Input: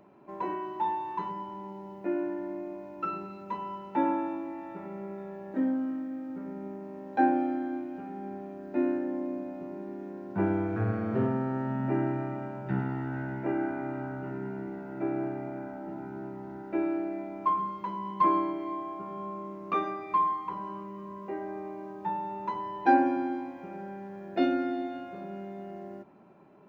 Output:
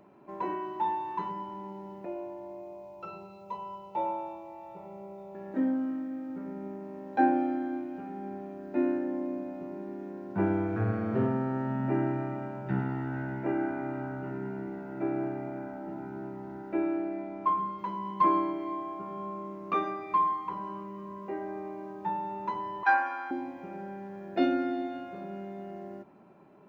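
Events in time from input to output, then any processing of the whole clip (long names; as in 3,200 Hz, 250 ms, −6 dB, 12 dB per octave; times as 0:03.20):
0:02.05–0:05.35: phaser with its sweep stopped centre 670 Hz, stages 4
0:16.73–0:17.79: high-frequency loss of the air 70 metres
0:22.83–0:23.31: high-pass with resonance 1,200 Hz, resonance Q 4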